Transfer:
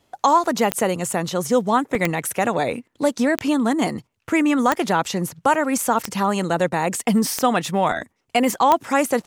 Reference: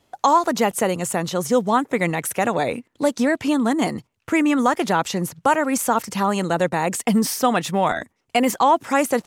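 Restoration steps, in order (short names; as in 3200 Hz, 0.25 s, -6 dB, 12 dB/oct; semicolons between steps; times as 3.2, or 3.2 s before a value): de-click; interpolate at 1.95, 1.6 ms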